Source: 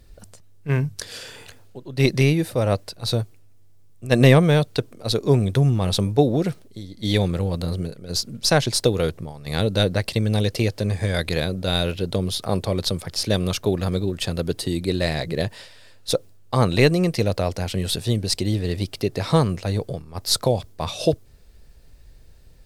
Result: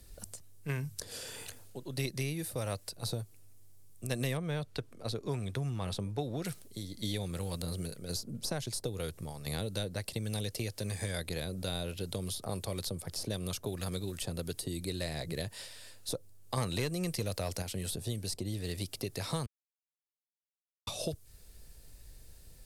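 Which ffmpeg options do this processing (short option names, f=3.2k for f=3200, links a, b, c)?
-filter_complex "[0:a]asettb=1/sr,asplit=3[a][b][c];[a]atrim=end=4.374[d];[b]atrim=start=4.37:end=6.45,asetpts=PTS-STARTPTS,afade=t=in:d=0.004:c=qsin,afade=t=out:st=2.076:d=0.004:c=qsin,lowpass=f=1.6k:p=1[e];[c]atrim=start=6.446[f];[d][e]acrossfade=d=0.004:c1=hsin:c2=qsin[g];[g][f]acrossfade=d=0.004:c1=qsin:c2=hsin,asettb=1/sr,asplit=3[h][i][j];[h]atrim=end=16.574[k];[i]atrim=start=16.57:end=17.62,asetpts=PTS-STARTPTS,afade=t=in:d=0.004:c=qsin,afade=t=out:st=1.046:d=0.004:c=qsin,acontrast=75[l];[j]atrim=start=17.616[m];[k][l]acrossfade=d=0.004:c1=hsin:c2=qsin[n];[n][m]acrossfade=d=0.004:c1=qsin:c2=hsin,asplit=3[o][p][q];[o]atrim=end=19.46,asetpts=PTS-STARTPTS,afade=t=out:st=19.456:d=0.004:c=hsin[r];[p]atrim=start=19.46:end=20.87,asetpts=PTS-STARTPTS,volume=0[s];[q]atrim=start=20.87,asetpts=PTS-STARTPTS,afade=t=in:d=0.004:c=hsin[t];[r][s][t]concat=n=3:v=0:a=1,equalizer=f=11k:t=o:w=1.6:g=14,acrossover=split=110|1000[u][v][w];[u]acompressor=threshold=-38dB:ratio=4[x];[v]acompressor=threshold=-33dB:ratio=4[y];[w]acompressor=threshold=-36dB:ratio=4[z];[x][y][z]amix=inputs=3:normalize=0,volume=-5dB"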